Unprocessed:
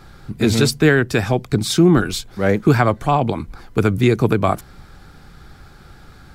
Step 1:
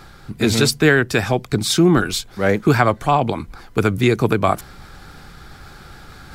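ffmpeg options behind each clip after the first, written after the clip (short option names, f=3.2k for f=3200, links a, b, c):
-af "lowshelf=f=490:g=-5,areverse,acompressor=mode=upward:threshold=-35dB:ratio=2.5,areverse,volume=2.5dB"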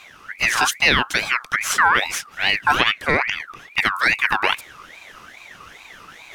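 -af "aeval=exprs='val(0)*sin(2*PI*1800*n/s+1800*0.35/2.4*sin(2*PI*2.4*n/s))':c=same"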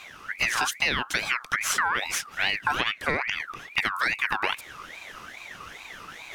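-af "acompressor=threshold=-22dB:ratio=6"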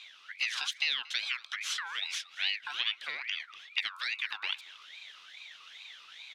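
-af "bandpass=f=3.6k:t=q:w=2.9:csg=0,aecho=1:1:232:0.0794,volume=1.5dB"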